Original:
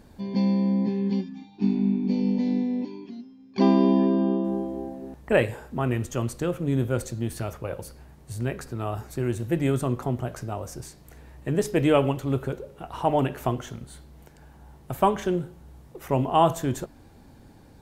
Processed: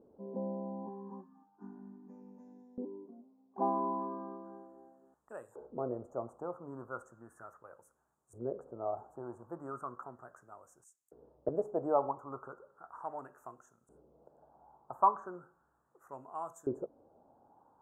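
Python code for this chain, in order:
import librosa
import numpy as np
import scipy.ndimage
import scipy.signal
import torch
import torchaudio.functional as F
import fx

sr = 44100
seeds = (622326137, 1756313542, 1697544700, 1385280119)

y = fx.filter_lfo_bandpass(x, sr, shape='saw_up', hz=0.36, low_hz=420.0, high_hz=3600.0, q=3.1)
y = scipy.signal.sosfilt(scipy.signal.ellip(3, 1.0, 40, [1300.0, 7100.0], 'bandstop', fs=sr, output='sos'), y)
y = fx.band_widen(y, sr, depth_pct=100, at=(10.84, 11.49))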